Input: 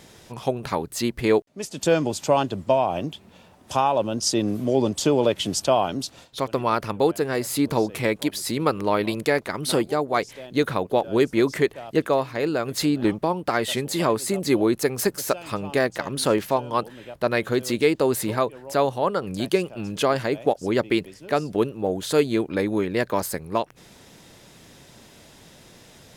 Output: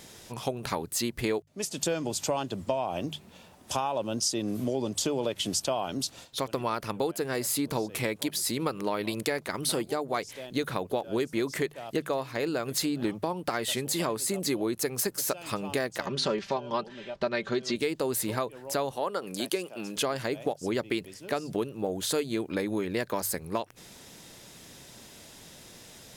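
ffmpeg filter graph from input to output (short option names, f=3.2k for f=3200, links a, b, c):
-filter_complex "[0:a]asettb=1/sr,asplit=3[a][b][c];[a]atrim=end=16.064[d];[b]atrim=start=16.06:end=17.76,asetpts=PTS-STARTPTS,afade=t=in:d=0.004:c=qsin,afade=t=out:st=1.696:d=0.004:c=qsin,lowpass=f=5.8k:w=0.5412,lowpass=f=5.8k:w=1.3066,aecho=1:1:5.1:0.65,atrim=end_sample=74970[e];[c]atrim=start=17.756[f];[d][e]acrossfade=d=0.004:c1=hsin:c2=qsin[g];[g][f]acrossfade=d=0.004:c1=qsin:c2=hsin,asettb=1/sr,asplit=3[h][i][j];[h]atrim=end=18.914[k];[i]atrim=start=18.91:end=19.97,asetpts=PTS-STARTPTS,afade=t=in:d=0.004:c=qsin,afade=t=out:st=1.056:d=0.004:c=qsin,highpass=260,equalizer=f=11k:t=o:w=0.5:g=3[l];[j]atrim=start=19.966[m];[k][l]acrossfade=d=0.004:c1=hsin:c2=qsin[n];[n][m]acrossfade=d=0.004:c1=qsin:c2=hsin,highshelf=f=3.9k:g=7,bandreject=f=50:t=h:w=6,bandreject=f=100:t=h:w=6,bandreject=f=150:t=h:w=6,acompressor=threshold=-24dB:ratio=4,volume=-2.5dB"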